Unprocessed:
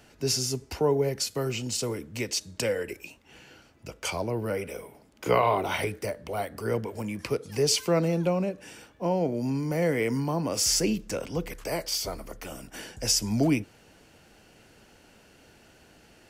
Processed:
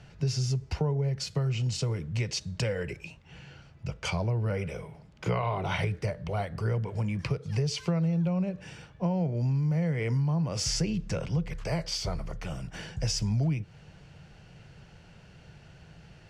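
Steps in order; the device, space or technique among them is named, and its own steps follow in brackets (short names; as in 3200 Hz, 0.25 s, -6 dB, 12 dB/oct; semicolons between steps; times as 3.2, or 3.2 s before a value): jukebox (LPF 5200 Hz 12 dB/oct; resonant low shelf 200 Hz +8 dB, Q 3; compressor 6:1, threshold -25 dBFS, peak gain reduction 12 dB)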